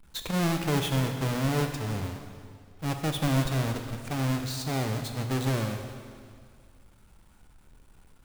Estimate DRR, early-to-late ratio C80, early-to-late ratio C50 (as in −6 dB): 4.5 dB, 7.5 dB, 6.5 dB